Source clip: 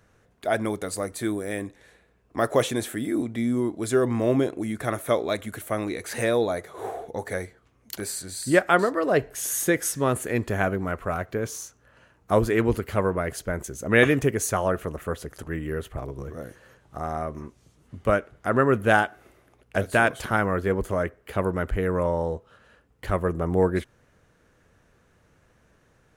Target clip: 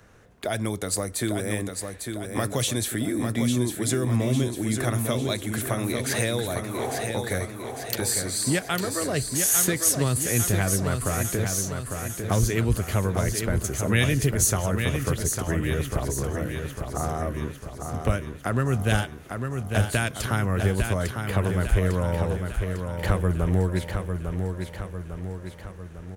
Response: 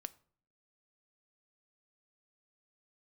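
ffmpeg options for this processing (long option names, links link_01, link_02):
-filter_complex "[0:a]acrossover=split=160|3000[link_01][link_02][link_03];[link_02]acompressor=threshold=-34dB:ratio=10[link_04];[link_01][link_04][link_03]amix=inputs=3:normalize=0,asplit=2[link_05][link_06];[link_06]aecho=0:1:851|1702|2553|3404|4255|5106|5957:0.501|0.271|0.146|0.0789|0.0426|0.023|0.0124[link_07];[link_05][link_07]amix=inputs=2:normalize=0,volume=7dB"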